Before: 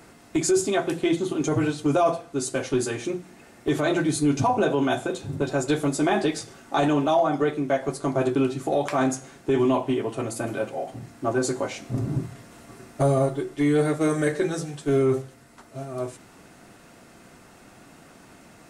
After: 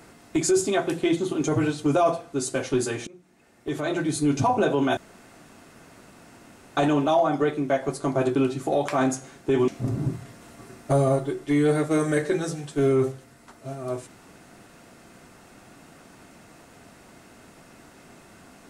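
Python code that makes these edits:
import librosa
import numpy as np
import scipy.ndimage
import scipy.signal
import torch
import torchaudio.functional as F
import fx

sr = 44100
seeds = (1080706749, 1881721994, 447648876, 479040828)

y = fx.edit(x, sr, fx.fade_in_from(start_s=3.07, length_s=1.35, floor_db=-23.0),
    fx.room_tone_fill(start_s=4.97, length_s=1.8),
    fx.cut(start_s=9.68, length_s=2.1), tone=tone)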